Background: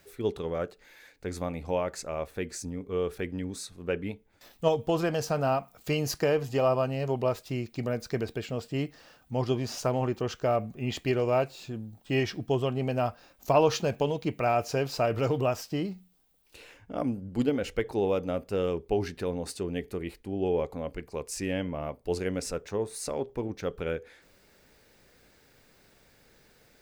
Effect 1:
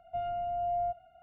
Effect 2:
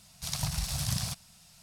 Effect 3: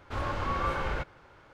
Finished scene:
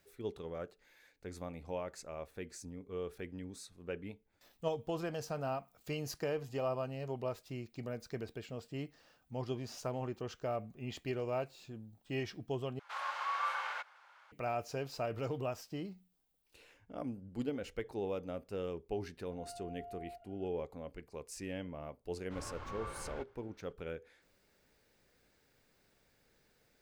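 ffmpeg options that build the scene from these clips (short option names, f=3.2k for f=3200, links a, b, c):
-filter_complex "[3:a]asplit=2[a][b];[0:a]volume=-11dB[c];[a]highpass=f=810:w=0.5412,highpass=f=810:w=1.3066[d];[1:a]acompressor=threshold=-43dB:ratio=6:attack=3.2:release=140:knee=1:detection=peak[e];[c]asplit=2[f][g];[f]atrim=end=12.794[h];[d]atrim=end=1.53,asetpts=PTS-STARTPTS,volume=-3dB[i];[g]atrim=start=14.316[j];[e]atrim=end=1.22,asetpts=PTS-STARTPTS,volume=-5.5dB,afade=t=in:d=0.004:c=hsin,afade=t=out:st=1.216:d=0.004:c=hsin,adelay=19250[k];[b]atrim=end=1.53,asetpts=PTS-STARTPTS,volume=-15dB,afade=t=in:d=0.004:c=hsin,afade=t=out:st=1.526:d=0.004:c=hsin,adelay=22200[l];[h][i]acrossfade=d=0.004:c1=hsin:c2=hsin[m];[m][j]acrossfade=d=0.004:c1=hsin:c2=hsin[n];[n][k][l]amix=inputs=3:normalize=0"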